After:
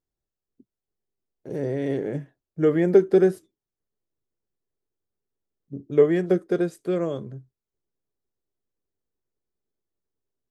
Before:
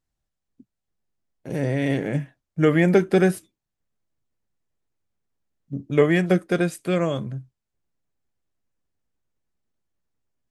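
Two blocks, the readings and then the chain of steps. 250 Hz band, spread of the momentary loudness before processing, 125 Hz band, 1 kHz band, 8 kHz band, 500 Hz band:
-2.5 dB, 17 LU, -7.0 dB, -7.0 dB, under -10 dB, +1.0 dB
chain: fifteen-band graphic EQ 400 Hz +11 dB, 2.5 kHz -7 dB, 10 kHz -6 dB; trim -7.5 dB

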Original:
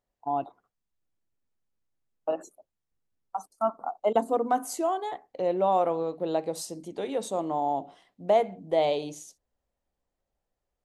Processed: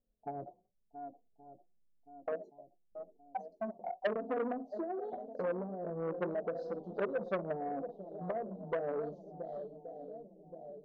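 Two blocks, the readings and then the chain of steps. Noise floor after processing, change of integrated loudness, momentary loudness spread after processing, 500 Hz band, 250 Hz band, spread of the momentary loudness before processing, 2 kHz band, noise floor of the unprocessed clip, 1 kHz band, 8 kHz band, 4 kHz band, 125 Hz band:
-74 dBFS, -11.0 dB, 15 LU, -9.0 dB, -7.0 dB, 14 LU, -2.5 dB, -85 dBFS, -13.5 dB, under -35 dB, under -15 dB, -3.5 dB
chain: flange 0.3 Hz, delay 9 ms, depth 3.6 ms, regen -42%; in parallel at +2 dB: gain riding 2 s; on the sum: peak limiter -17.5 dBFS, peak gain reduction 9.5 dB; distance through air 160 m; on a send: shuffle delay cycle 1124 ms, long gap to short 1.5:1, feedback 46%, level -15 dB; on the sum: low-pass that closes with the level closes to 490 Hz, closed at -23 dBFS; dynamic bell 260 Hz, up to -6 dB, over -45 dBFS, Q 1.2; level-controlled noise filter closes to 460 Hz, open at -27.5 dBFS; Chebyshev band-stop 650–4500 Hz, order 3; flange 0.9 Hz, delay 3.9 ms, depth 1.8 ms, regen +17%; transformer saturation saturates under 1.1 kHz; trim +2 dB

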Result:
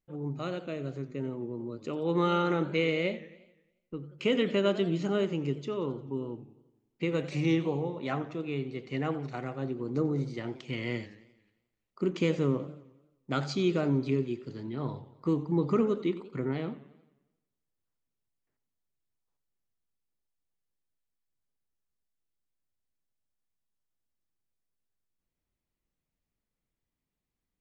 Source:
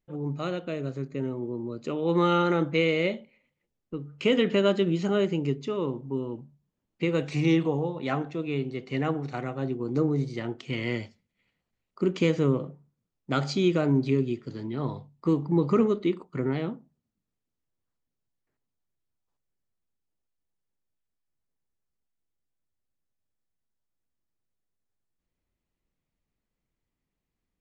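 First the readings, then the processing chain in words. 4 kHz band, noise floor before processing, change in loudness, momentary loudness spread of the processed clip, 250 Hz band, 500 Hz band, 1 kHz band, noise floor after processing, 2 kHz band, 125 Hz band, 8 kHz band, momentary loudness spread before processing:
-4.0 dB, -84 dBFS, -4.0 dB, 11 LU, -4.0 dB, -4.0 dB, -4.0 dB, under -85 dBFS, -4.0 dB, -4.0 dB, no reading, 11 LU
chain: modulated delay 88 ms, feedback 55%, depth 173 cents, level -16 dB; trim -4 dB

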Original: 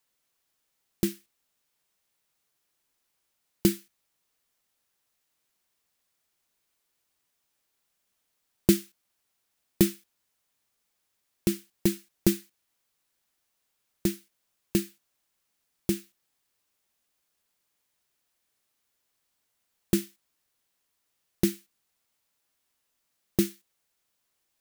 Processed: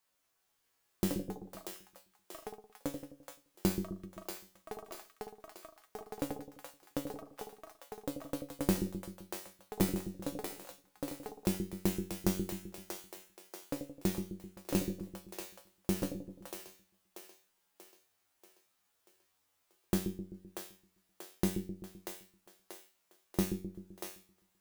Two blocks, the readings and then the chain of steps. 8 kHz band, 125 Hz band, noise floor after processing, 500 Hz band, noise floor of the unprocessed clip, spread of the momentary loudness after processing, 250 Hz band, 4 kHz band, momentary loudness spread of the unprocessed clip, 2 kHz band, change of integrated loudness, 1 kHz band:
-5.5 dB, -3.5 dB, -78 dBFS, -4.5 dB, -78 dBFS, 18 LU, -5.5 dB, -5.5 dB, 10 LU, -3.0 dB, -10.0 dB, +7.5 dB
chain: peaking EQ 900 Hz +4.5 dB 1.9 oct; compression 3:1, threshold -25 dBFS, peak gain reduction 9 dB; feedback comb 94 Hz, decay 0.35 s, harmonics all, mix 90%; on a send: two-band feedback delay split 430 Hz, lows 129 ms, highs 636 ms, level -5.5 dB; on the sum: ever faster or slower copies 421 ms, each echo +7 st, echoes 3, each echo -6 dB; trim +7 dB

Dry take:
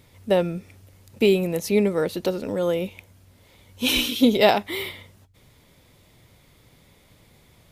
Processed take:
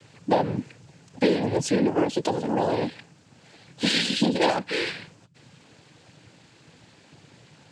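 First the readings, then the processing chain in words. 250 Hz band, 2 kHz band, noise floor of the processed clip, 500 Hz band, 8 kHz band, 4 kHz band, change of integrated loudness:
-1.5 dB, -1.0 dB, -56 dBFS, -4.0 dB, -1.0 dB, -1.5 dB, -2.5 dB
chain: compression 2.5:1, threshold -26 dBFS, peak gain reduction 10 dB; noise-vocoded speech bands 8; trim +4.5 dB

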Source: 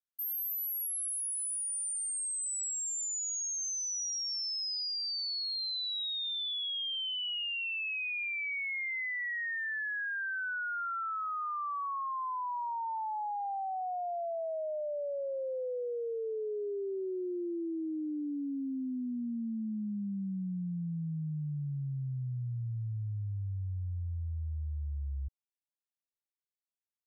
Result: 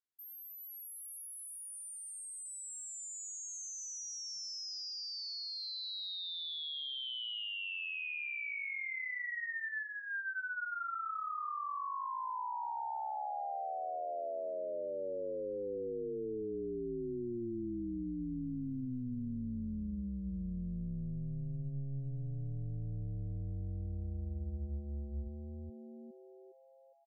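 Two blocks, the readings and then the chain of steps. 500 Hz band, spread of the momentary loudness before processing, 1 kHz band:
-3.5 dB, 5 LU, -3.5 dB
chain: low-pass 3.8 kHz 6 dB/octave; on a send: frequency-shifting echo 410 ms, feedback 50%, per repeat -150 Hz, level -5.5 dB; on the sum: trim -4.5 dB

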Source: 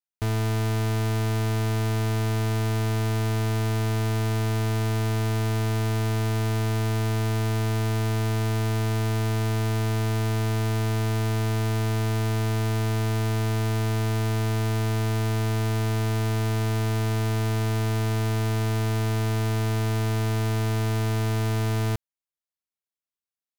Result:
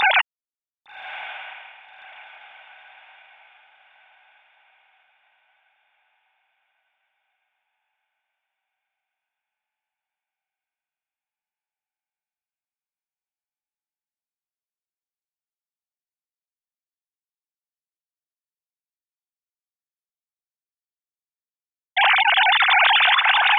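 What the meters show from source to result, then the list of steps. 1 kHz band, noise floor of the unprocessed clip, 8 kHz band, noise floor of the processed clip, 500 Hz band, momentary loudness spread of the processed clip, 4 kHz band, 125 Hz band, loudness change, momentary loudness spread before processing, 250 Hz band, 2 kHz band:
+7.5 dB, under -85 dBFS, under -35 dB, under -85 dBFS, -11.5 dB, 19 LU, +10.5 dB, under -40 dB, +10.0 dB, 0 LU, under -40 dB, +12.0 dB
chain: formants replaced by sine waves; echo that smears into a reverb 1162 ms, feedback 41%, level -14 dB; trim -3 dB

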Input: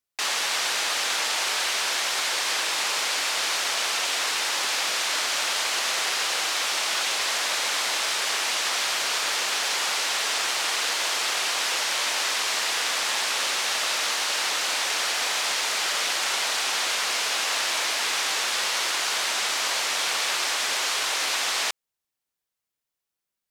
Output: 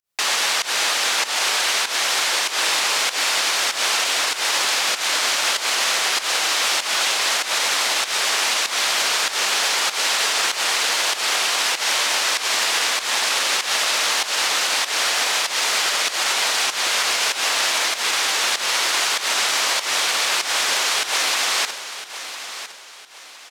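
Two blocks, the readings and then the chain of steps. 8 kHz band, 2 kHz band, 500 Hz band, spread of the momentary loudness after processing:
+5.0 dB, +5.0 dB, +5.0 dB, 1 LU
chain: peak limiter -17.5 dBFS, peak gain reduction 5 dB; volume shaper 97 bpm, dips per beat 1, -21 dB, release 152 ms; feedback delay 1009 ms, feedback 34%, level -12 dB; trim +7 dB

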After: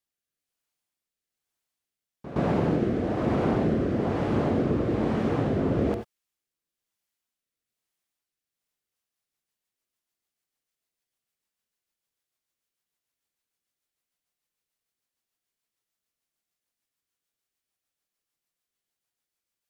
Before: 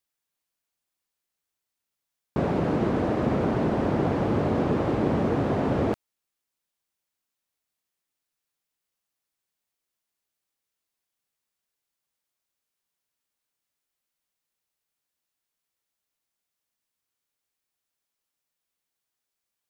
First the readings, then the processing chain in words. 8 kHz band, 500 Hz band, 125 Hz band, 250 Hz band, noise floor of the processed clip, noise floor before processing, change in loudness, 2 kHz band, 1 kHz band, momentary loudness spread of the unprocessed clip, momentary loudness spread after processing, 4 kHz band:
no reading, -1.0 dB, -0.5 dB, 0.0 dB, under -85 dBFS, -85 dBFS, -0.5 dB, -2.0 dB, -3.0 dB, 3 LU, 3 LU, -1.0 dB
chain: rotary cabinet horn 1.1 Hz, later 6.7 Hz, at 8.43 s; pre-echo 118 ms -13.5 dB; gated-style reverb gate 110 ms rising, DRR 6.5 dB

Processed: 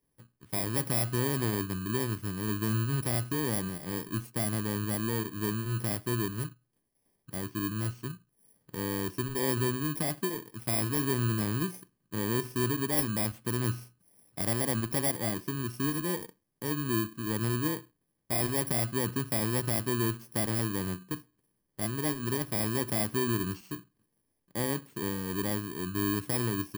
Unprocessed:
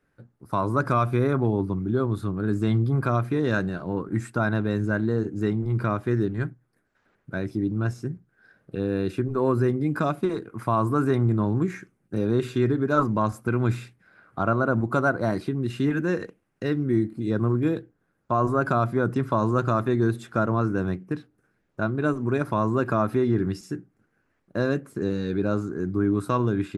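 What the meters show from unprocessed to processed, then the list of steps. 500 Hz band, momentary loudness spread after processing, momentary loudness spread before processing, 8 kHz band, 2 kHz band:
-9.5 dB, 8 LU, 8 LU, no reading, -6.0 dB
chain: bit-reversed sample order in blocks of 32 samples; trim -7 dB

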